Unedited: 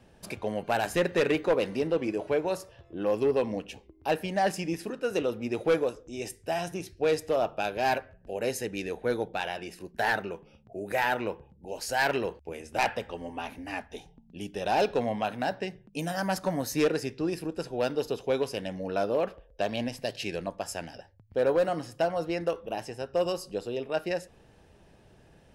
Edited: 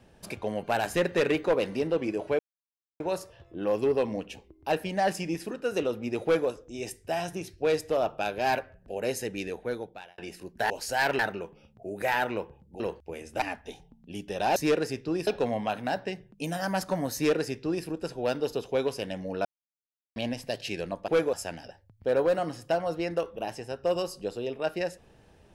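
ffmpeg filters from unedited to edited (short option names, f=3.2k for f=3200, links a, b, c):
-filter_complex "[0:a]asplit=13[a][b][c][d][e][f][g][h][i][j][k][l][m];[a]atrim=end=2.39,asetpts=PTS-STARTPTS,afade=t=out:st=2.386:d=0.004:c=hsin,apad=pad_dur=0.61[n];[b]atrim=start=2.39:end=9.57,asetpts=PTS-STARTPTS,afade=t=in:d=0.004:c=hsin,afade=t=out:st=6.42:d=0.76[o];[c]atrim=start=9.57:end=10.092,asetpts=PTS-STARTPTS,afade=t=in:d=0.004:c=hsin[p];[d]atrim=start=11.698:end=12.192[q];[e]atrim=start=10.088:end=11.702[r];[f]atrim=start=12.188:end=12.812[s];[g]atrim=start=13.678:end=14.822[t];[h]atrim=start=16.688:end=17.402[u];[i]atrim=start=14.818:end=19,asetpts=PTS-STARTPTS,afade=t=out:st=4.178:d=0.004:c=hsin[v];[j]atrim=start=19:end=19.71,asetpts=PTS-STARTPTS,volume=0[w];[k]atrim=start=19.71:end=20.632,asetpts=PTS-STARTPTS,afade=t=in:d=0.004:c=hsin[x];[l]atrim=start=5.628:end=5.882[y];[m]atrim=start=20.628[z];[n][o][p]concat=n=3:v=0:a=1[aa];[aa][q]acrossfade=d=0.004:c1=hsin:c2=hsin[ab];[ab][r]acrossfade=d=0.004:c1=hsin:c2=hsin[ac];[ac][s]acrossfade=d=0.004:c1=hsin:c2=hsin[ad];[ad][t]acrossfade=d=0.004:c1=hsin:c2=hsin[ae];[ae][u]acrossfade=d=0.004:c1=hsin:c2=hsin[af];[v][w][x]concat=n=3:v=0:a=1[ag];[af][ag]acrossfade=d=0.004:c1=hsin:c2=hsin[ah];[ah][y]acrossfade=d=0.004:c1=hsin:c2=hsin[ai];[ai][z]acrossfade=d=0.004:c1=hsin:c2=hsin"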